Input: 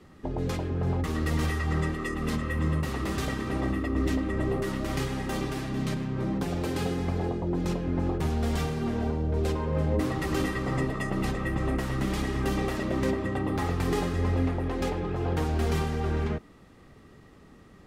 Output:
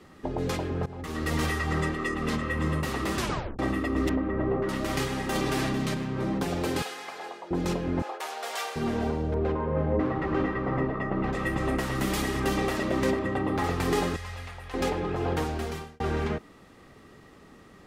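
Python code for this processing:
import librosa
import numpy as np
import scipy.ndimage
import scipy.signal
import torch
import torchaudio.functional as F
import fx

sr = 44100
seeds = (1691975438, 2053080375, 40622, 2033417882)

y = fx.high_shelf(x, sr, hz=9600.0, db=-10.5, at=(1.89, 2.6))
y = fx.lowpass(y, sr, hz=1500.0, slope=12, at=(4.09, 4.69))
y = fx.env_flatten(y, sr, amount_pct=100, at=(5.35, 5.86))
y = fx.highpass(y, sr, hz=940.0, slope=12, at=(6.82, 7.51))
y = fx.highpass(y, sr, hz=580.0, slope=24, at=(8.02, 8.76))
y = fx.lowpass(y, sr, hz=1600.0, slope=12, at=(9.34, 11.33))
y = fx.high_shelf(y, sr, hz=9900.0, db=10.5, at=(11.95, 12.4))
y = fx.high_shelf(y, sr, hz=4200.0, db=-7.0, at=(13.19, 13.64))
y = fx.tone_stack(y, sr, knobs='10-0-10', at=(14.16, 14.74))
y = fx.edit(y, sr, fx.fade_in_from(start_s=0.86, length_s=0.49, floor_db=-19.0),
    fx.tape_stop(start_s=3.18, length_s=0.41),
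    fx.fade_out_span(start_s=15.31, length_s=0.69), tone=tone)
y = fx.low_shelf(y, sr, hz=210.0, db=-8.0)
y = y * 10.0 ** (4.0 / 20.0)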